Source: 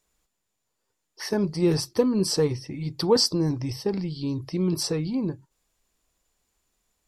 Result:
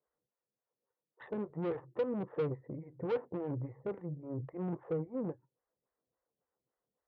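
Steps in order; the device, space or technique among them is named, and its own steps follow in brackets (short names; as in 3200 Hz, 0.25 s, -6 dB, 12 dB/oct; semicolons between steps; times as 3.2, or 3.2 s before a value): steep low-pass 2000 Hz 96 dB/oct; vibe pedal into a guitar amplifier (photocell phaser 3.6 Hz; tube stage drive 29 dB, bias 0.65; speaker cabinet 100–4500 Hz, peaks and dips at 130 Hz +9 dB, 500 Hz +9 dB, 1700 Hz -4 dB); gain -5.5 dB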